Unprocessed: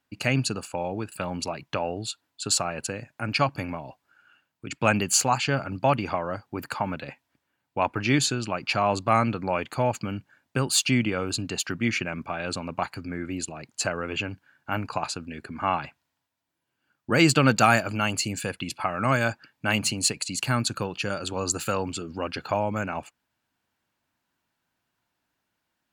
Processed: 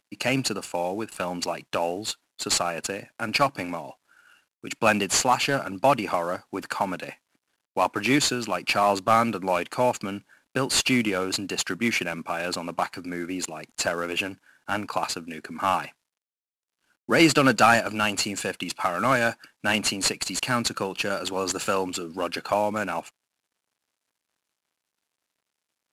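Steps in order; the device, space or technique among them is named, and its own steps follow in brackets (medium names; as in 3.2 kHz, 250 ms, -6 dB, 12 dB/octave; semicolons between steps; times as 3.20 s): early wireless headset (high-pass 220 Hz 12 dB/octave; CVSD coder 64 kbps); trim +3 dB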